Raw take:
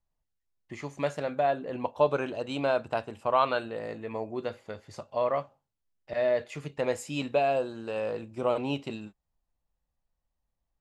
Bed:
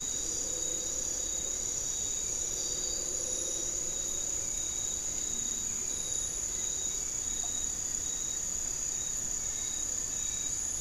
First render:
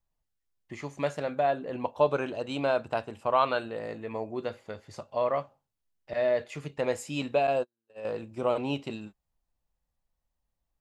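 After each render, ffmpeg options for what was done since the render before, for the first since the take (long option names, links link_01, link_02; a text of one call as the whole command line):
ffmpeg -i in.wav -filter_complex "[0:a]asettb=1/sr,asplit=3[link_01][link_02][link_03];[link_01]atrim=end=7.474[link_04];[link_02]atrim=start=7.47:end=8.05,asetpts=PTS-STARTPTS,afade=type=in:duration=0.004:curve=qsin,afade=type=out:start_time=0.576:duration=0.004:curve=qsin,agate=range=-50dB:threshold=-30dB:ratio=16:release=100:detection=peak[link_05];[link_03]atrim=start=8.046[link_06];[link_04][link_05]acrossfade=duration=0.004:curve1=hsin:curve2=qsin[link_07];[link_07][link_06]acrossfade=duration=0.004:curve1=qsin:curve2=hsin" out.wav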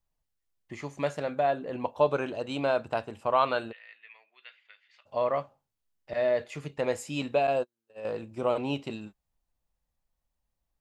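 ffmpeg -i in.wav -filter_complex "[0:a]asplit=3[link_01][link_02][link_03];[link_01]afade=type=out:start_time=3.71:duration=0.02[link_04];[link_02]asuperpass=centerf=2500:order=4:qfactor=1.6,afade=type=in:start_time=3.71:duration=0.02,afade=type=out:start_time=5.05:duration=0.02[link_05];[link_03]afade=type=in:start_time=5.05:duration=0.02[link_06];[link_04][link_05][link_06]amix=inputs=3:normalize=0" out.wav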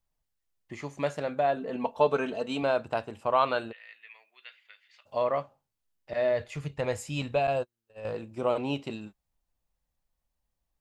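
ffmpeg -i in.wav -filter_complex "[0:a]asettb=1/sr,asplit=3[link_01][link_02][link_03];[link_01]atrim=end=1.564[link_04];[link_02]atrim=start=1.56:end=2.63,asetpts=PTS-STARTPTS,afade=type=in:duration=0.004:curve=qsin,afade=type=out:start_time=1.066:duration=0.004:curve=qsin,aecho=1:1:4.5:0.61,atrim=end_sample=47187[link_05];[link_03]atrim=start=2.626[link_06];[link_04][link_05]acrossfade=duration=0.004:curve1=hsin:curve2=qsin[link_07];[link_07][link_06]acrossfade=duration=0.004:curve1=qsin:curve2=hsin,asettb=1/sr,asplit=3[link_08][link_09][link_10];[link_08]atrim=end=3.794[link_11];[link_09]atrim=start=3.79:end=5.23,asetpts=PTS-STARTPTS,afade=type=in:duration=0.004:curve=qsin,afade=type=out:start_time=1.436:duration=0.004:curve=qsin,highshelf=frequency=4400:gain=6.5[link_12];[link_10]atrim=start=5.226[link_13];[link_11][link_12]acrossfade=duration=0.004:curve1=hsin:curve2=qsin[link_14];[link_14][link_13]acrossfade=duration=0.004:curve1=qsin:curve2=hsin,asplit=3[link_15][link_16][link_17];[link_15]afade=type=out:start_time=6.31:duration=0.02[link_18];[link_16]asubboost=boost=5.5:cutoff=110,afade=type=in:start_time=6.31:duration=0.02,afade=type=out:start_time=8.13:duration=0.02[link_19];[link_17]afade=type=in:start_time=8.13:duration=0.02[link_20];[link_18][link_19][link_20]amix=inputs=3:normalize=0" out.wav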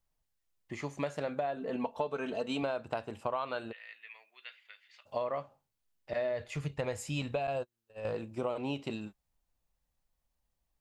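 ffmpeg -i in.wav -af "acompressor=threshold=-30dB:ratio=12" out.wav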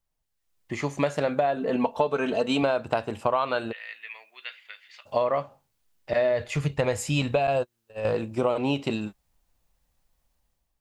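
ffmpeg -i in.wav -af "dynaudnorm=framelen=150:gausssize=7:maxgain=10dB" out.wav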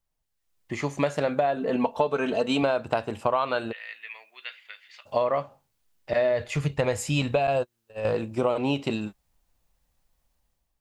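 ffmpeg -i in.wav -af anull out.wav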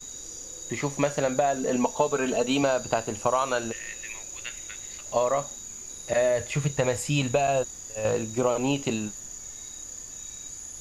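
ffmpeg -i in.wav -i bed.wav -filter_complex "[1:a]volume=-6dB[link_01];[0:a][link_01]amix=inputs=2:normalize=0" out.wav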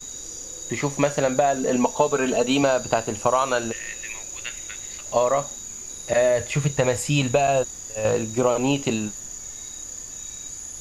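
ffmpeg -i in.wav -af "volume=4dB" out.wav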